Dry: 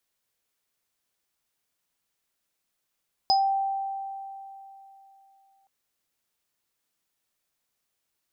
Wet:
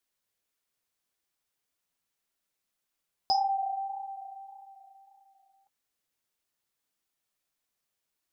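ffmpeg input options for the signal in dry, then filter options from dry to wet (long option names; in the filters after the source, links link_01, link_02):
-f lavfi -i "aevalsrc='0.126*pow(10,-3*t/3.16)*sin(2*PI*782*t)+0.126*pow(10,-3*t/0.23)*sin(2*PI*5030*t)':duration=2.37:sample_rate=44100"
-af "flanger=delay=2.7:depth=7.7:regen=-42:speed=1.7:shape=sinusoidal"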